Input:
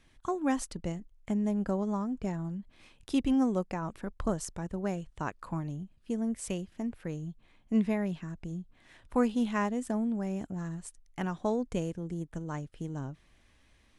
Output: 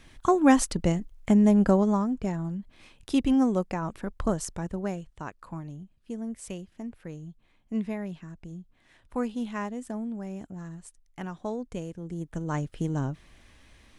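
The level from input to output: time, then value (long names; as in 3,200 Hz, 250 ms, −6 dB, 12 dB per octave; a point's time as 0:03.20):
0:01.68 +10.5 dB
0:02.24 +4 dB
0:04.67 +4 dB
0:05.23 −3 dB
0:11.88 −3 dB
0:12.63 +8.5 dB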